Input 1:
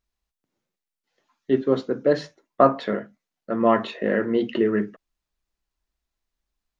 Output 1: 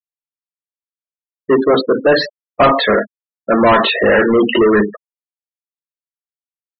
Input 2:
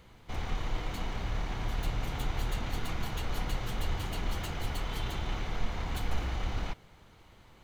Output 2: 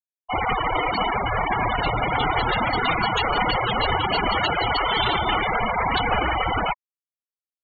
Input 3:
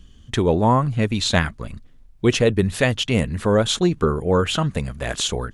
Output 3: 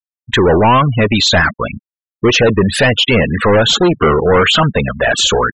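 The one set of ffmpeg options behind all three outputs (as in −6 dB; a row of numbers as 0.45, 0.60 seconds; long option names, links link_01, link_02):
-filter_complex "[0:a]asplit=2[link_01][link_02];[link_02]highpass=frequency=720:poles=1,volume=31dB,asoftclip=type=tanh:threshold=-2.5dB[link_03];[link_01][link_03]amix=inputs=2:normalize=0,lowpass=frequency=5200:poles=1,volume=-6dB,afftfilt=real='re*gte(hypot(re,im),0.224)':imag='im*gte(hypot(re,im),0.224)':win_size=1024:overlap=0.75"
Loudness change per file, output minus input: +9.5, +14.5, +9.0 LU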